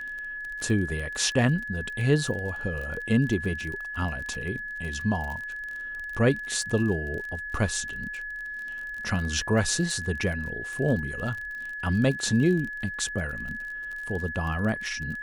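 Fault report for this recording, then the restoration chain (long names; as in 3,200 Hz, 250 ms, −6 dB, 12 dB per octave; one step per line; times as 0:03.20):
surface crackle 33 per second −33 dBFS
whistle 1,700 Hz −33 dBFS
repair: click removal
notch filter 1,700 Hz, Q 30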